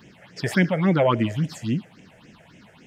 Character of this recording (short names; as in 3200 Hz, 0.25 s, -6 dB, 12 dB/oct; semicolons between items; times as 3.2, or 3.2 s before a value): phasing stages 6, 3.6 Hz, lowest notch 270–1200 Hz